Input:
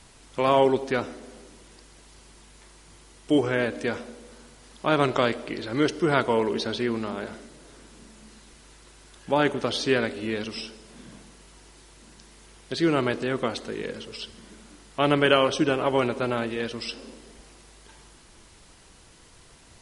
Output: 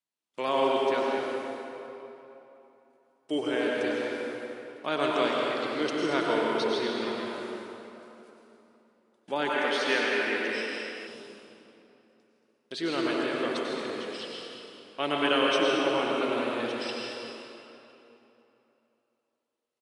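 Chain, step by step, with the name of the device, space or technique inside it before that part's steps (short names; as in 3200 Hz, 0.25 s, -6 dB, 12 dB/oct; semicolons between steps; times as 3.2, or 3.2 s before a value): gate -46 dBFS, range -35 dB; stadium PA (HPF 240 Hz 12 dB/oct; bell 3300 Hz +4 dB 1.2 oct; loudspeakers at several distances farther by 55 m -12 dB, 78 m -11 dB; reverb RT60 3.2 s, pre-delay 90 ms, DRR -2 dB); 9.49–11.07 graphic EQ 125/2000/4000 Hz -10/+9/-4 dB; gain -8 dB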